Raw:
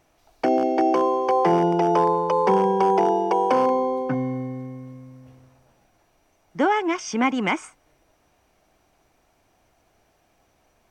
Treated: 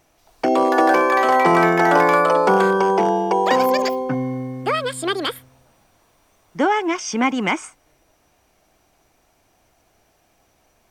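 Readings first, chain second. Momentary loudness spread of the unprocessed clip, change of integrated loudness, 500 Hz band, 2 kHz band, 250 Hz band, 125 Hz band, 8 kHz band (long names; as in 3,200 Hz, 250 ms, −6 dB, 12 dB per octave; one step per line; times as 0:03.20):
10 LU, +3.5 dB, +3.0 dB, +10.5 dB, +2.5 dB, +2.0 dB, +7.5 dB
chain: high-shelf EQ 4,600 Hz +5.5 dB
delay with pitch and tempo change per echo 263 ms, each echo +7 semitones, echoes 2
level +2 dB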